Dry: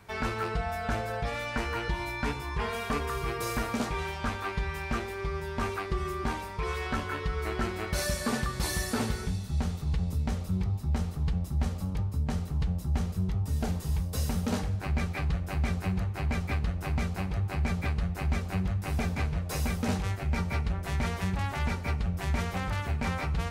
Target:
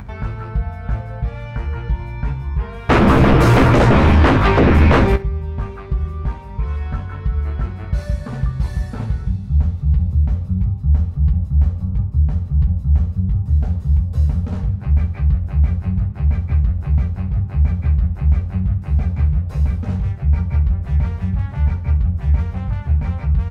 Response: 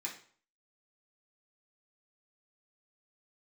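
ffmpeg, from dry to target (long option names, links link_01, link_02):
-filter_complex "[0:a]lowpass=frequency=1200:poles=1,lowshelf=frequency=190:width_type=q:width=1.5:gain=11,acompressor=mode=upward:threshold=-25dB:ratio=2.5,aeval=exprs='val(0)+0.0158*(sin(2*PI*50*n/s)+sin(2*PI*2*50*n/s)/2+sin(2*PI*3*50*n/s)/3+sin(2*PI*4*50*n/s)/4+sin(2*PI*5*50*n/s)/5)':channel_layout=same,asettb=1/sr,asplit=3[link_01][link_02][link_03];[link_01]atrim=end=2.894[link_04];[link_02]atrim=start=2.89:end=5.16,asetpts=PTS-STARTPTS,afade=type=in:duration=0.004:curve=qsin,afade=type=out:start_time=2.266:duration=0.004:curve=qsin,aeval=exprs='0.376*sin(PI/2*8.91*val(0)/0.376)':channel_layout=same[link_05];[link_03]atrim=start=5.156[link_06];[link_04][link_05]acrossfade=duration=0.004:curve1=hsin:curve2=qsin[link_07];[link_07][link_06]acrossfade=duration=0.004:curve1=qsin:curve2=hsin,aecho=1:1:15|66:0.398|0.158"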